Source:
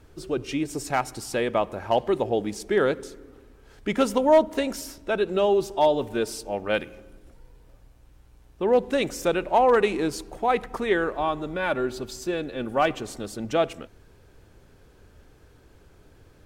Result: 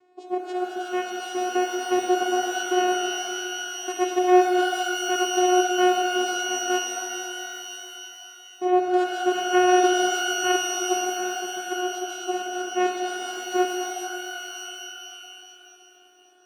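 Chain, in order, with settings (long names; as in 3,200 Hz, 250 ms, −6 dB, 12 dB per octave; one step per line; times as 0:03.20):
0:10.67–0:11.93: running median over 41 samples
channel vocoder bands 4, saw 363 Hz
reverb with rising layers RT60 3 s, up +12 semitones, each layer −2 dB, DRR 3.5 dB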